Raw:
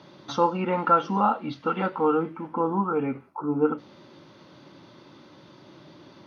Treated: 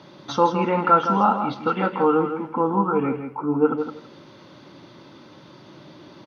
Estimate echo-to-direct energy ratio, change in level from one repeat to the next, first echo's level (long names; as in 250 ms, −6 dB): −8.0 dB, −16.0 dB, −8.0 dB